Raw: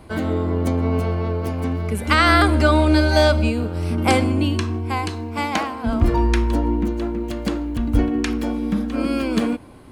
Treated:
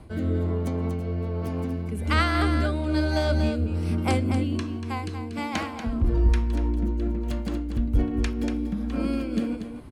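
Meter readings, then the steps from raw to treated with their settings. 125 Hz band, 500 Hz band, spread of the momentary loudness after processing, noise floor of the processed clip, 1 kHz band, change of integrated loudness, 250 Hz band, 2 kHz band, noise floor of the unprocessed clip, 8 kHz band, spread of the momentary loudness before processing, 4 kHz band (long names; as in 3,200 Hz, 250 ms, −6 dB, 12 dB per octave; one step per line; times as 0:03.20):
−4.0 dB, −9.0 dB, 7 LU, −35 dBFS, −10.0 dB, −6.5 dB, −6.0 dB, −9.5 dB, −31 dBFS, −9.0 dB, 10 LU, −9.5 dB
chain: low-shelf EQ 190 Hz +8 dB
in parallel at −3 dB: downward compressor, threshold −20 dBFS, peak gain reduction 15.5 dB
on the sum: rotating-speaker cabinet horn 1.2 Hz
soft clipping −2 dBFS, distortion −22 dB
on a send: single-tap delay 237 ms −8.5 dB
on the sum: amplitude modulation by smooth noise, depth 55%
level −6.5 dB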